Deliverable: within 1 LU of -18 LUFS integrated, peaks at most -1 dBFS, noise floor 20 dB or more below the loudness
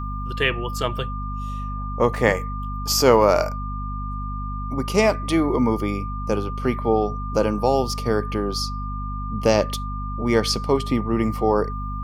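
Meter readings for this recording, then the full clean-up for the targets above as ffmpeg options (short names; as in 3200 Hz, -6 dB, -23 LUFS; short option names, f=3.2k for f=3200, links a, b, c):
hum 50 Hz; harmonics up to 250 Hz; hum level -27 dBFS; steady tone 1200 Hz; tone level -32 dBFS; loudness -22.5 LUFS; peak -2.5 dBFS; loudness target -18.0 LUFS
-> -af "bandreject=f=50:t=h:w=4,bandreject=f=100:t=h:w=4,bandreject=f=150:t=h:w=4,bandreject=f=200:t=h:w=4,bandreject=f=250:t=h:w=4"
-af "bandreject=f=1.2k:w=30"
-af "volume=4.5dB,alimiter=limit=-1dB:level=0:latency=1"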